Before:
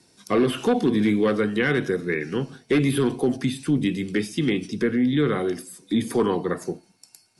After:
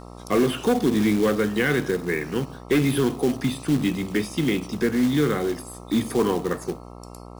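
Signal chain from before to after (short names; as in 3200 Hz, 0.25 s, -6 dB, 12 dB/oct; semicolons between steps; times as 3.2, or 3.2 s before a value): short-mantissa float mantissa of 2-bit; buzz 60 Hz, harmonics 22, -41 dBFS -3 dB/oct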